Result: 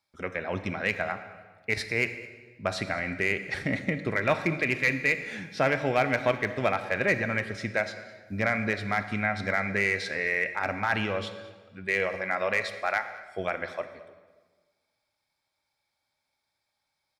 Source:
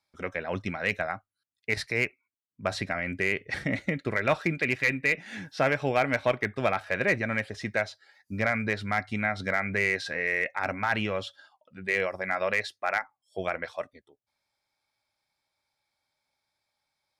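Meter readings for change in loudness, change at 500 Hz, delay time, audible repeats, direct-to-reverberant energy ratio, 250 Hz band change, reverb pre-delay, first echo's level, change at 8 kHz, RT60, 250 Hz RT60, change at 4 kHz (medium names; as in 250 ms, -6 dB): +0.5 dB, +0.5 dB, 209 ms, 1, 9.5 dB, +0.5 dB, 28 ms, -21.5 dB, +0.5 dB, 1.4 s, 1.7 s, +0.5 dB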